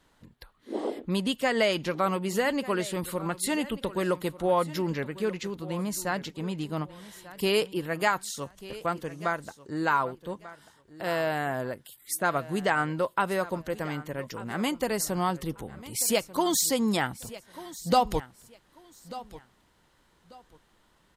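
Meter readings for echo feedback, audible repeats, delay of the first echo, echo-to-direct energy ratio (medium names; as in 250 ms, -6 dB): 24%, 2, 1191 ms, -17.0 dB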